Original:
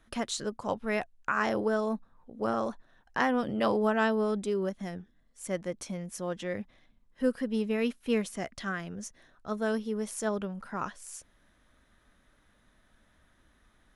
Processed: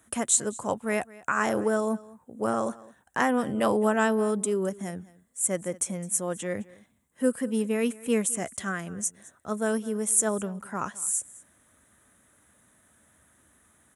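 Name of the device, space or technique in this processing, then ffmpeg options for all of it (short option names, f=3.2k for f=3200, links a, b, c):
budget condenser microphone: -af "highpass=f=71:w=0.5412,highpass=f=71:w=1.3066,highshelf=f=6.2k:t=q:w=3:g=10,aecho=1:1:212:0.0891,volume=3dB"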